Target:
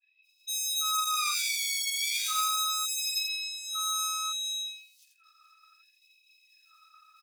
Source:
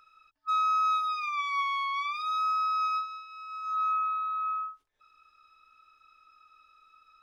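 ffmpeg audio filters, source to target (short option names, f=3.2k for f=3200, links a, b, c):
-filter_complex "[0:a]asettb=1/sr,asplit=3[a][b][c];[a]atrim=end=1.854[d];[b]atrim=start=1.85:end=2.42,asetpts=PTS-STARTPTS,afade=t=in:d=0.004:c=qsin,afade=t=out:st=0.566:d=0.004:c=qsin,aeval=exprs='val(0)+0.5*0.00531*sgn(val(0))':c=same[e];[c]atrim=start=2.416[f];[d][e]acrossfade=d=0.004:c1=hsin:c2=qsin[g];[g][f]acrossfade=d=0.004:c1=qsin:c2=hsin,agate=range=-33dB:threshold=-52dB:ratio=3:detection=peak,adynamicequalizer=threshold=0.00282:dfrequency=4800:dqfactor=0.9:tfrequency=4800:tqfactor=0.9:attack=5:release=100:ratio=0.375:range=4:mode=boostabove:tftype=bell,asplit=2[h][i];[i]acompressor=threshold=-36dB:ratio=6,volume=-1.5dB[j];[h][j]amix=inputs=2:normalize=0,acrossover=split=3000[k][l];[l]adelay=220[m];[k][m]amix=inputs=2:normalize=0,asoftclip=type=tanh:threshold=-34.5dB,crystalizer=i=5.5:c=0,asplit=2[n][o];[o]aecho=0:1:85|170|255:0.531|0.0849|0.0136[p];[n][p]amix=inputs=2:normalize=0,afftfilt=real='re*gte(b*sr/1024,1000*pow(2200/1000,0.5+0.5*sin(2*PI*0.68*pts/sr)))':imag='im*gte(b*sr/1024,1000*pow(2200/1000,0.5+0.5*sin(2*PI*0.68*pts/sr)))':win_size=1024:overlap=0.75"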